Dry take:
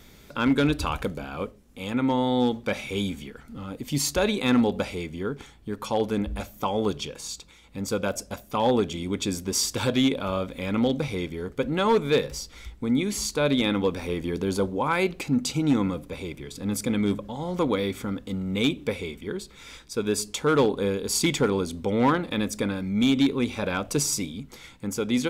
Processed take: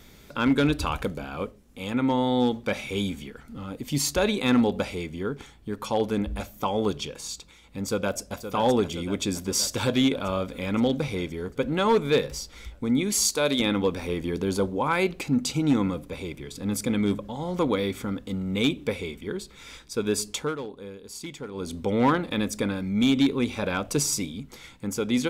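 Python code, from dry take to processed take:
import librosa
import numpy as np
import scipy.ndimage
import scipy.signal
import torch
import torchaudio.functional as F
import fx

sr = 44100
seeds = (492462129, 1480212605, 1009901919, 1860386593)

y = fx.echo_throw(x, sr, start_s=7.88, length_s=0.52, ms=520, feedback_pct=70, wet_db=-9.5)
y = fx.bass_treble(y, sr, bass_db=-8, treble_db=8, at=(13.12, 13.6))
y = fx.edit(y, sr, fx.fade_down_up(start_s=20.36, length_s=1.37, db=-14.5, fade_s=0.2), tone=tone)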